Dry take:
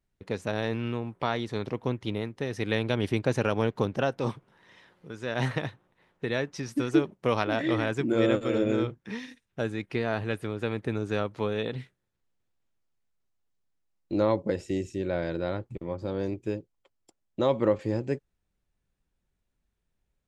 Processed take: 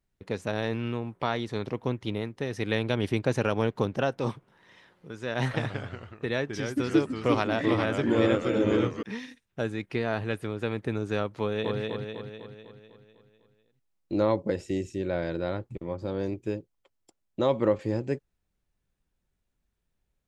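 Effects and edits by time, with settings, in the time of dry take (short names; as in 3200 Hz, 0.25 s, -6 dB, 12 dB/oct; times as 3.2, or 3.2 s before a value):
5.38–9.03 echoes that change speed 0.157 s, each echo -2 st, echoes 3, each echo -6 dB
11.39–11.79 echo throw 0.25 s, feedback 55%, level -2.5 dB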